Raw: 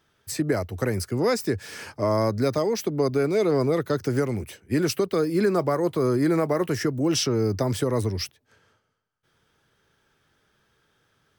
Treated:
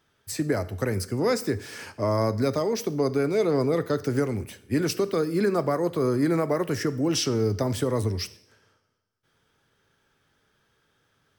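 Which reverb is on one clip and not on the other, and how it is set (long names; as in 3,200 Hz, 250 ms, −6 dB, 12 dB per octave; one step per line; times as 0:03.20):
coupled-rooms reverb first 0.62 s, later 1.6 s, from −18 dB, DRR 13.5 dB
level −1.5 dB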